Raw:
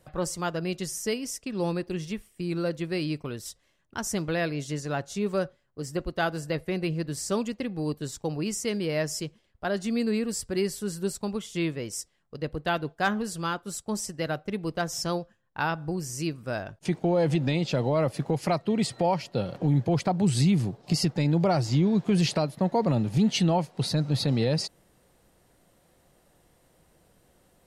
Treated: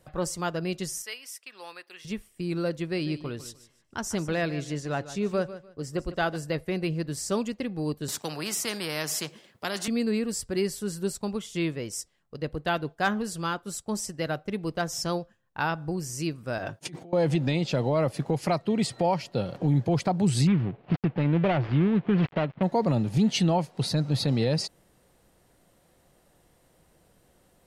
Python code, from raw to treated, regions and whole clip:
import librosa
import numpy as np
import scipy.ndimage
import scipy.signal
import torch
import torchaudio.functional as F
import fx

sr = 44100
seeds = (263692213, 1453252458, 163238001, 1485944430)

y = fx.chain(x, sr, fx.highpass(hz=1300.0, slope=12),
    fx.peak_eq(hz=6500.0, db=-9.0, octaves=0.91), at=(1.02, 2.05))
y = fx.chain(y, sr, fx.high_shelf(hz=9000.0, db=-7.0),
    fx.echo_feedback(ms=149, feedback_pct=24, wet_db=-14), at=(2.84, 6.36))
y = fx.chain(y, sr, fx.highpass(hz=140.0, slope=24),
    fx.spectral_comp(ratio=2.0), at=(8.08, 9.88))
y = fx.chain(y, sr, fx.highpass(hz=130.0, slope=12),
    fx.over_compress(threshold_db=-38.0, ratio=-1.0),
    fx.notch_comb(f0_hz=210.0), at=(16.58, 17.13))
y = fx.chain(y, sr, fx.dead_time(dead_ms=0.24),
    fx.lowpass(hz=2900.0, slope=24), at=(20.47, 22.63))